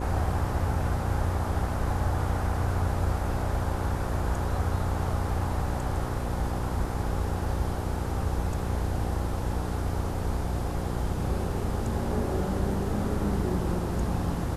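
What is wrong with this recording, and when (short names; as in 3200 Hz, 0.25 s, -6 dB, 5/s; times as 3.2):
buzz 60 Hz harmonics 9 -32 dBFS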